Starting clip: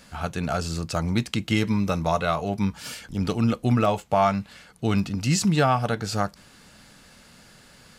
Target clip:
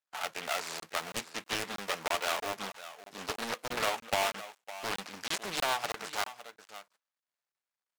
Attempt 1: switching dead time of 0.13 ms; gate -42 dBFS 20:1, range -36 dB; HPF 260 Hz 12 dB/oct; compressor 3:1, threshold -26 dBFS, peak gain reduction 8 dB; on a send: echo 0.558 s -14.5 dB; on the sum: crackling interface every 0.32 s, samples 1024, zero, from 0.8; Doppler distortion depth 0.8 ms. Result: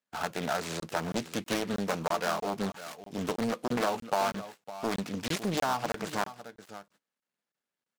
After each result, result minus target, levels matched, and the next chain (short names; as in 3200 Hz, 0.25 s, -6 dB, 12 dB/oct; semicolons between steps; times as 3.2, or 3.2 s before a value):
250 Hz band +11.0 dB; switching dead time: distortion -5 dB
switching dead time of 0.13 ms; gate -42 dBFS 20:1, range -36 dB; HPF 740 Hz 12 dB/oct; compressor 3:1, threshold -26 dBFS, peak gain reduction 6.5 dB; on a send: echo 0.558 s -14.5 dB; on the sum: crackling interface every 0.32 s, samples 1024, zero, from 0.8; Doppler distortion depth 0.8 ms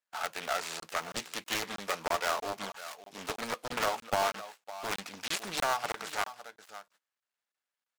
switching dead time: distortion -5 dB
switching dead time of 0.27 ms; gate -42 dBFS 20:1, range -36 dB; HPF 740 Hz 12 dB/oct; compressor 3:1, threshold -26 dBFS, peak gain reduction 6 dB; on a send: echo 0.558 s -14.5 dB; on the sum: crackling interface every 0.32 s, samples 1024, zero, from 0.8; Doppler distortion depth 0.8 ms